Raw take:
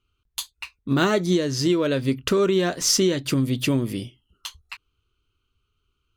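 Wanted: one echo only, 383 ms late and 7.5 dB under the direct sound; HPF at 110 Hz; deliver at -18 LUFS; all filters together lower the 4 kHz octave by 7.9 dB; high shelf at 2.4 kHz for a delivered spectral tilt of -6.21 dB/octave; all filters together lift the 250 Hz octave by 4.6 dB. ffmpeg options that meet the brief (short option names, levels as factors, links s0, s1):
-af "highpass=110,equalizer=f=250:t=o:g=6.5,highshelf=f=2400:g=-4.5,equalizer=f=4000:t=o:g=-6.5,aecho=1:1:383:0.422,volume=1.19"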